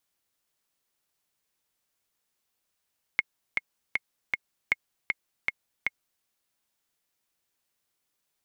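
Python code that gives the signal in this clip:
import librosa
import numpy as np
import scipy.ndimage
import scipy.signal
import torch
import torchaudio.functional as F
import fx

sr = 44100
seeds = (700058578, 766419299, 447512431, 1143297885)

y = fx.click_track(sr, bpm=157, beats=4, bars=2, hz=2160.0, accent_db=3.5, level_db=-9.0)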